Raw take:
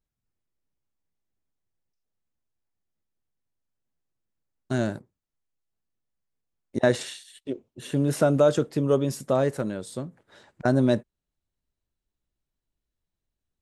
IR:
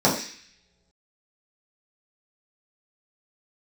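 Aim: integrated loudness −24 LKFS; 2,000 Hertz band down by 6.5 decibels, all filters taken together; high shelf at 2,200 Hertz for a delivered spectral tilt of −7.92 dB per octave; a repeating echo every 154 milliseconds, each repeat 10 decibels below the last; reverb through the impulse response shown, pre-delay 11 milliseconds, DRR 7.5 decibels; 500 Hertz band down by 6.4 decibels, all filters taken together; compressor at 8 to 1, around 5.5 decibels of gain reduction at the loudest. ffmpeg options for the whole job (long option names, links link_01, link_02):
-filter_complex "[0:a]equalizer=frequency=500:width_type=o:gain=-7.5,equalizer=frequency=2000:width_type=o:gain=-7,highshelf=frequency=2200:gain=-3.5,acompressor=threshold=-25dB:ratio=8,aecho=1:1:154|308|462|616:0.316|0.101|0.0324|0.0104,asplit=2[link_01][link_02];[1:a]atrim=start_sample=2205,adelay=11[link_03];[link_02][link_03]afir=irnorm=-1:irlink=0,volume=-26dB[link_04];[link_01][link_04]amix=inputs=2:normalize=0,volume=6.5dB"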